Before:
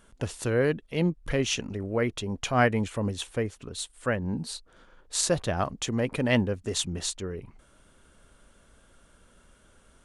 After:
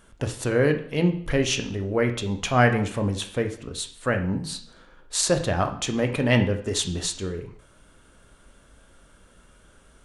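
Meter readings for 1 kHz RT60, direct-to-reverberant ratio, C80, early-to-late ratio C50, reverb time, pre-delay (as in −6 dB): 0.60 s, 5.5 dB, 14.0 dB, 11.0 dB, 0.60 s, 8 ms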